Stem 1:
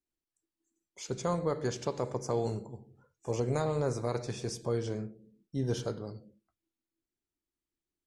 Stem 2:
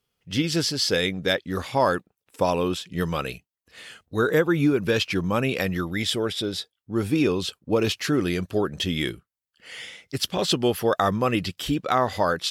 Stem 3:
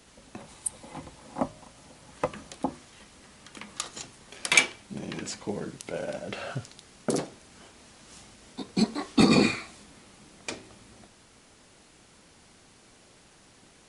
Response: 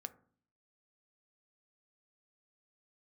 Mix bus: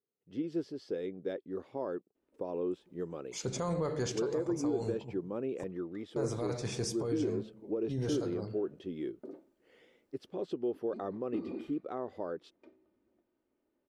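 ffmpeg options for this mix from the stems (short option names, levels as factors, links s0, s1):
-filter_complex "[0:a]alimiter=level_in=1.41:limit=0.0631:level=0:latency=1:release=15,volume=0.708,adelay=2350,volume=1.12,asplit=3[s0][s1][s2];[s0]atrim=end=5.64,asetpts=PTS-STARTPTS,afade=t=out:st=5.636:d=0.004:c=hsin[s3];[s1]atrim=start=5.64:end=6.16,asetpts=PTS-STARTPTS,volume=0[s4];[s2]atrim=start=6.16,asetpts=PTS-STARTPTS,afade=t=in:d=0.004:c=hsin[s5];[s3][s4][s5]concat=n=3:v=0:a=1,asplit=2[s6][s7];[s7]volume=0.422[s8];[1:a]highshelf=f=6500:g=7,volume=0.501,asplit=2[s9][s10];[2:a]lowpass=2400,aecho=1:1:3.3:0.45,adelay=2150,volume=0.141,asplit=2[s11][s12];[s12]volume=0.266[s13];[s10]apad=whole_len=459381[s14];[s6][s14]sidechaincompress=threshold=0.0355:ratio=8:attack=9:release=421[s15];[s9][s11]amix=inputs=2:normalize=0,bandpass=f=370:t=q:w=2.4:csg=0,alimiter=level_in=1.19:limit=0.0631:level=0:latency=1:release=140,volume=0.841,volume=1[s16];[3:a]atrim=start_sample=2205[s17];[s8][s13]amix=inputs=2:normalize=0[s18];[s18][s17]afir=irnorm=-1:irlink=0[s19];[s15][s16][s19]amix=inputs=3:normalize=0"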